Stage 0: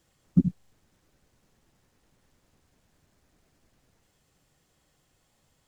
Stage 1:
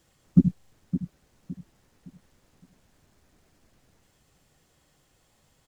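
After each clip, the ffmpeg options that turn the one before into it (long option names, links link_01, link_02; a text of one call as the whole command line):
ffmpeg -i in.wav -filter_complex "[0:a]asplit=2[link_01][link_02];[link_02]adelay=563,lowpass=frequency=2000:poles=1,volume=-11dB,asplit=2[link_03][link_04];[link_04]adelay=563,lowpass=frequency=2000:poles=1,volume=0.33,asplit=2[link_05][link_06];[link_06]adelay=563,lowpass=frequency=2000:poles=1,volume=0.33,asplit=2[link_07][link_08];[link_08]adelay=563,lowpass=frequency=2000:poles=1,volume=0.33[link_09];[link_01][link_03][link_05][link_07][link_09]amix=inputs=5:normalize=0,volume=3.5dB" out.wav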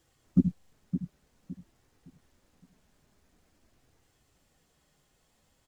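ffmpeg -i in.wav -af "flanger=delay=2.5:depth=2.4:regen=-58:speed=0.5:shape=sinusoidal" out.wav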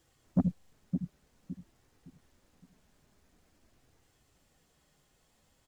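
ffmpeg -i in.wav -af "asoftclip=type=tanh:threshold=-19dB" out.wav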